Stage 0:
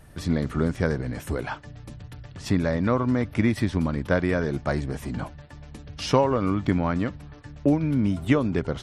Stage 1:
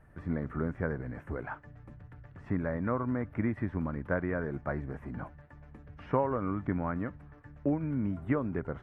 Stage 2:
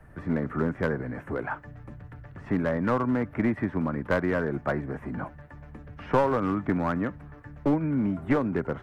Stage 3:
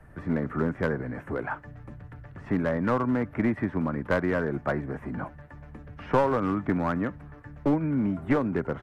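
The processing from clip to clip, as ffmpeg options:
ffmpeg -i in.wav -filter_complex "[0:a]acrossover=split=2700[link_01][link_02];[link_02]acompressor=threshold=-54dB:ratio=4:attack=1:release=60[link_03];[link_01][link_03]amix=inputs=2:normalize=0,highshelf=frequency=2600:width_type=q:width=1.5:gain=-14,volume=-9dB" out.wav
ffmpeg -i in.wav -filter_complex "[0:a]acrossover=split=140|270|1300[link_01][link_02][link_03][link_04];[link_01]acompressor=threshold=-51dB:ratio=4[link_05];[link_05][link_02][link_03][link_04]amix=inputs=4:normalize=0,aeval=exprs='clip(val(0),-1,0.0376)':channel_layout=same,volume=7.5dB" out.wav
ffmpeg -i in.wav -af "aresample=32000,aresample=44100" out.wav

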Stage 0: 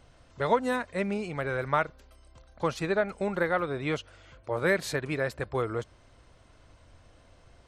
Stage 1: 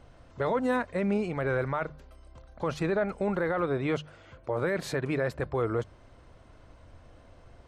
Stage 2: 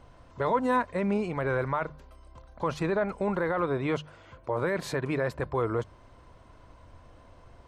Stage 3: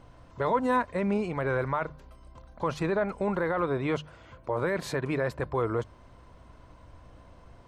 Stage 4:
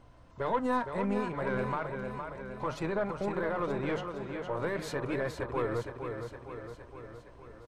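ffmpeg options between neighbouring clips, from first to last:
ffmpeg -i in.wav -af "highshelf=frequency=2200:gain=-9.5,bandreject=frequency=50:width_type=h:width=6,bandreject=frequency=100:width_type=h:width=6,bandreject=frequency=150:width_type=h:width=6,alimiter=limit=-24dB:level=0:latency=1:release=13,volume=4.5dB" out.wav
ffmpeg -i in.wav -af "equalizer=frequency=1000:width=6.8:gain=8.5" out.wav
ffmpeg -i in.wav -af "aeval=exprs='val(0)+0.00141*(sin(2*PI*60*n/s)+sin(2*PI*2*60*n/s)/2+sin(2*PI*3*60*n/s)/3+sin(2*PI*4*60*n/s)/4+sin(2*PI*5*60*n/s)/5)':channel_layout=same" out.wav
ffmpeg -i in.wav -af "aecho=1:1:463|926|1389|1852|2315|2778|3241|3704:0.447|0.264|0.155|0.0917|0.0541|0.0319|0.0188|0.0111,aeval=exprs='0.2*(cos(1*acos(clip(val(0)/0.2,-1,1)))-cos(1*PI/2))+0.0158*(cos(4*acos(clip(val(0)/0.2,-1,1)))-cos(4*PI/2))':channel_layout=same,flanger=delay=2.9:depth=8.6:regen=-80:speed=0.38:shape=sinusoidal" out.wav

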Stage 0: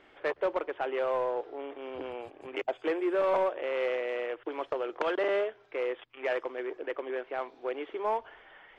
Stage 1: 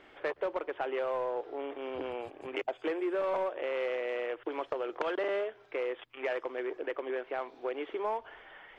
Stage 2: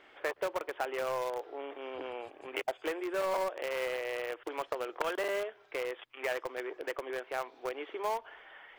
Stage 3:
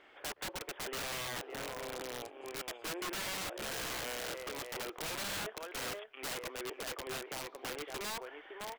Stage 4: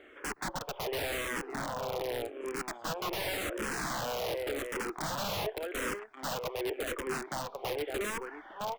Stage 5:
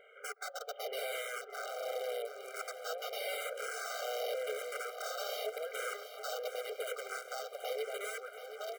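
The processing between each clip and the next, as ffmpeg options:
ffmpeg -i in.wav -af "acompressor=threshold=-34dB:ratio=2.5,volume=2dB" out.wav
ffmpeg -i in.wav -filter_complex "[0:a]lowshelf=frequency=310:gain=-11,asplit=2[link_01][link_02];[link_02]acrusher=bits=4:mix=0:aa=0.000001,volume=-11dB[link_03];[link_01][link_03]amix=inputs=2:normalize=0" out.wav
ffmpeg -i in.wav -filter_complex "[0:a]asplit=2[link_01][link_02];[link_02]aecho=0:1:562:0.355[link_03];[link_01][link_03]amix=inputs=2:normalize=0,aeval=exprs='(mod(42.2*val(0)+1,2)-1)/42.2':channel_layout=same,volume=-2dB" out.wav
ffmpeg -i in.wav -filter_complex "[0:a]asplit=2[link_01][link_02];[link_02]adynamicsmooth=sensitivity=4.5:basefreq=1500,volume=1dB[link_03];[link_01][link_03]amix=inputs=2:normalize=0,asplit=2[link_04][link_05];[link_05]afreqshift=-0.88[link_06];[link_04][link_06]amix=inputs=2:normalize=1,volume=4.5dB" out.wav
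ffmpeg -i in.wav -filter_complex "[0:a]asplit=2[link_01][link_02];[link_02]aecho=0:1:729|1458|2187|2916|3645|4374:0.282|0.155|0.0853|0.0469|0.0258|0.0142[link_03];[link_01][link_03]amix=inputs=2:normalize=0,afftfilt=real='re*eq(mod(floor(b*sr/1024/400),2),1)':imag='im*eq(mod(floor(b*sr/1024/400),2),1)':win_size=1024:overlap=0.75,volume=-1.5dB" out.wav

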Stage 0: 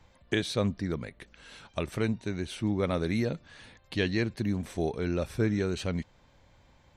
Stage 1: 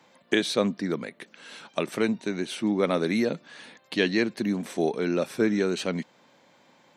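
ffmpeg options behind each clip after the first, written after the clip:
ffmpeg -i in.wav -af "highpass=frequency=190:width=0.5412,highpass=frequency=190:width=1.3066,volume=5.5dB" out.wav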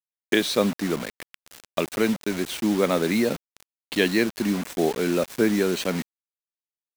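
ffmpeg -i in.wav -af "acrusher=bits=5:mix=0:aa=0.000001,volume=2.5dB" out.wav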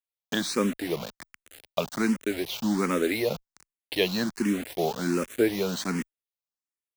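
ffmpeg -i in.wav -filter_complex "[0:a]asplit=2[link_01][link_02];[link_02]afreqshift=1.3[link_03];[link_01][link_03]amix=inputs=2:normalize=1" out.wav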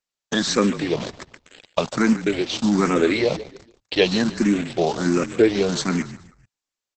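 ffmpeg -i in.wav -filter_complex "[0:a]asplit=4[link_01][link_02][link_03][link_04];[link_02]adelay=144,afreqshift=-42,volume=-15dB[link_05];[link_03]adelay=288,afreqshift=-84,volume=-23.9dB[link_06];[link_04]adelay=432,afreqshift=-126,volume=-32.7dB[link_07];[link_01][link_05][link_06][link_07]amix=inputs=4:normalize=0,volume=7.5dB" -ar 48000 -c:a libopus -b:a 10k out.opus

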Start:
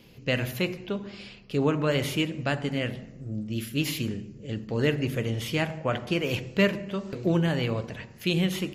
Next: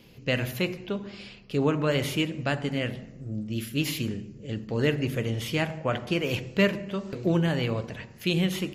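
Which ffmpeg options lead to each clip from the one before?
ffmpeg -i in.wav -af anull out.wav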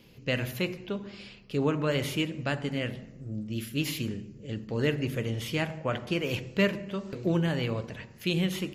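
ffmpeg -i in.wav -af "equalizer=frequency=720:width=6.9:gain=-2.5,volume=-2.5dB" out.wav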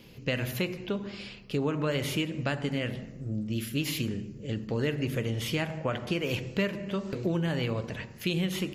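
ffmpeg -i in.wav -af "acompressor=threshold=-31dB:ratio=3,volume=4dB" out.wav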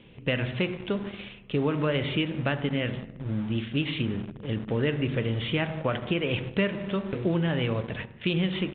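ffmpeg -i in.wav -filter_complex "[0:a]asplit=2[link_01][link_02];[link_02]acrusher=bits=5:mix=0:aa=0.000001,volume=-8dB[link_03];[link_01][link_03]amix=inputs=2:normalize=0,aresample=8000,aresample=44100" out.wav

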